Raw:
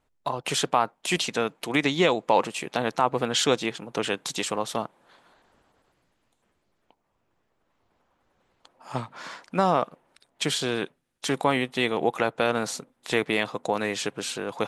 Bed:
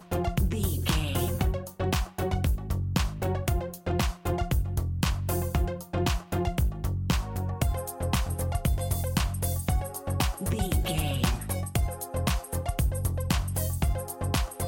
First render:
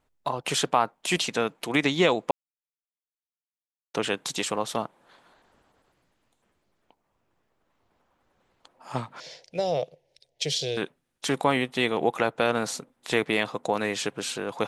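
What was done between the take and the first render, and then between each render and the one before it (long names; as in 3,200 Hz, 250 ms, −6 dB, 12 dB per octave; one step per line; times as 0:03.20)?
0:02.31–0:03.94: silence
0:09.20–0:10.77: drawn EQ curve 150 Hz 0 dB, 220 Hz −20 dB, 510 Hz +3 dB, 750 Hz −7 dB, 1,200 Hz −29 dB, 2,000 Hz −7 dB, 5,600 Hz +5 dB, 8,200 Hz −8 dB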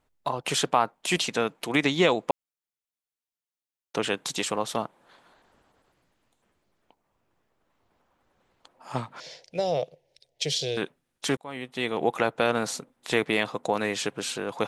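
0:11.37–0:12.12: fade in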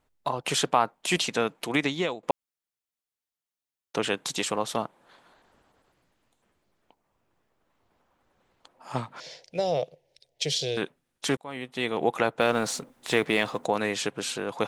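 0:01.66–0:02.23: fade out, to −16 dB
0:12.40–0:13.66: mu-law and A-law mismatch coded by mu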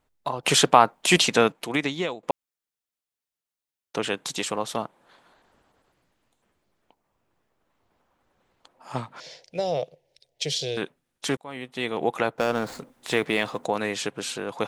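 0:00.43–0:01.52: clip gain +7 dB
0:12.36–0:12.79: running median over 15 samples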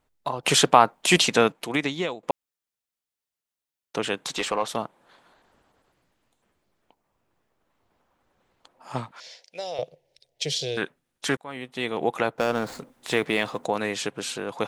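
0:04.27–0:04.68: mid-hump overdrive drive 14 dB, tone 2,000 Hz, clips at −11.5 dBFS
0:09.11–0:09.79: high-pass filter 1,200 Hz 6 dB per octave
0:10.76–0:11.52: dynamic equaliser 1,600 Hz, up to +7 dB, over −46 dBFS, Q 1.8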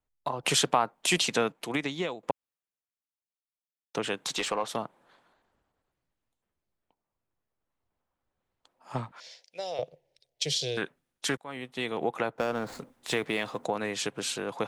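downward compressor 2.5 to 1, threshold −28 dBFS, peak gain reduction 13 dB
multiband upward and downward expander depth 40%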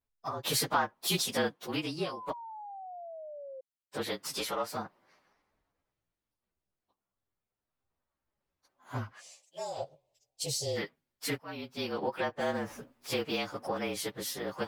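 partials spread apart or drawn together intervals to 111%
0:02.05–0:03.61: sound drawn into the spectrogram fall 520–1,100 Hz −44 dBFS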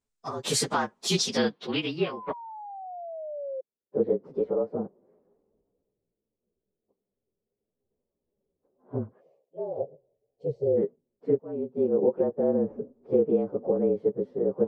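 hollow resonant body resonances 210/400 Hz, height 9 dB, ringing for 30 ms
low-pass filter sweep 7,800 Hz → 480 Hz, 0:00.92–0:03.80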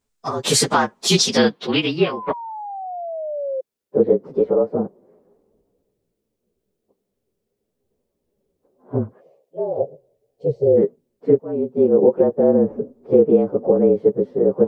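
level +9.5 dB
brickwall limiter −3 dBFS, peak gain reduction 1 dB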